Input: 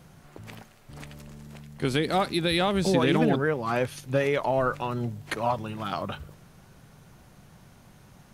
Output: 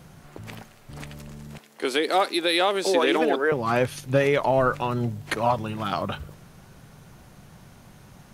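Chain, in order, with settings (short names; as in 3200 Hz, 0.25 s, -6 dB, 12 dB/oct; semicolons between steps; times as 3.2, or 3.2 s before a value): 1.58–3.52 HPF 330 Hz 24 dB/oct; gain +4 dB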